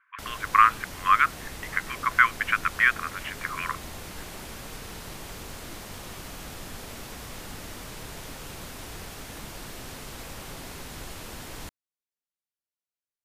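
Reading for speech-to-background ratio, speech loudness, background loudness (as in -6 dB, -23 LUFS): 15.5 dB, -24.0 LUFS, -39.5 LUFS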